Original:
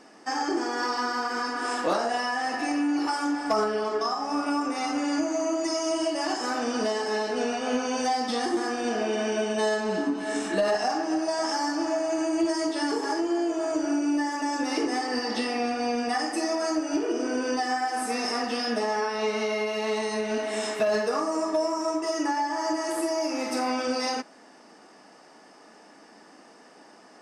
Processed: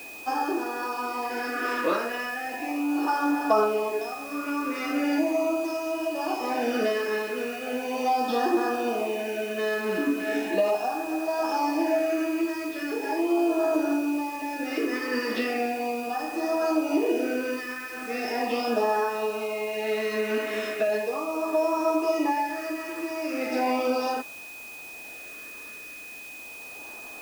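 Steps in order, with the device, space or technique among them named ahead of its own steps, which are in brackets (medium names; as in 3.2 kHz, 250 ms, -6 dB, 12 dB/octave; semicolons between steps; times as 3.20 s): shortwave radio (band-pass 280–2800 Hz; tremolo 0.59 Hz, depth 53%; LFO notch sine 0.38 Hz 750–2300 Hz; whistle 2.5 kHz -45 dBFS; white noise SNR 21 dB); trim +5 dB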